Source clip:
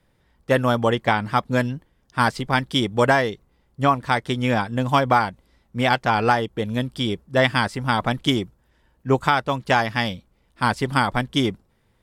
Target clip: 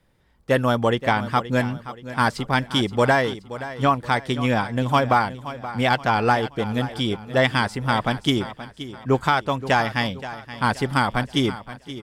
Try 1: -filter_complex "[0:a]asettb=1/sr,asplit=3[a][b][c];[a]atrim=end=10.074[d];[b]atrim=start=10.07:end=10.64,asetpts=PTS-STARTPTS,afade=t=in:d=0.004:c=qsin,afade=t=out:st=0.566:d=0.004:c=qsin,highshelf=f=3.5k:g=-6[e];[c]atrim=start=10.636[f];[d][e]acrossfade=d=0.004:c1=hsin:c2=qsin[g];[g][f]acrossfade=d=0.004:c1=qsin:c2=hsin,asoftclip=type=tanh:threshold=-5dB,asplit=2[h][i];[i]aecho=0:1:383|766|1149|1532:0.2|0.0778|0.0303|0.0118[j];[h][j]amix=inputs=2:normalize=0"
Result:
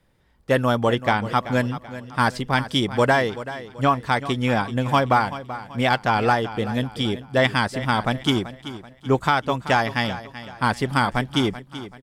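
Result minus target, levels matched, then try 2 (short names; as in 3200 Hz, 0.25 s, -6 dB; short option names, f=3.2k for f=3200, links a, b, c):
echo 0.142 s early
-filter_complex "[0:a]asettb=1/sr,asplit=3[a][b][c];[a]atrim=end=10.074[d];[b]atrim=start=10.07:end=10.64,asetpts=PTS-STARTPTS,afade=t=in:d=0.004:c=qsin,afade=t=out:st=0.566:d=0.004:c=qsin,highshelf=f=3.5k:g=-6[e];[c]atrim=start=10.636[f];[d][e]acrossfade=d=0.004:c1=hsin:c2=qsin[g];[g][f]acrossfade=d=0.004:c1=qsin:c2=hsin,asoftclip=type=tanh:threshold=-5dB,asplit=2[h][i];[i]aecho=0:1:525|1050|1575|2100:0.2|0.0778|0.0303|0.0118[j];[h][j]amix=inputs=2:normalize=0"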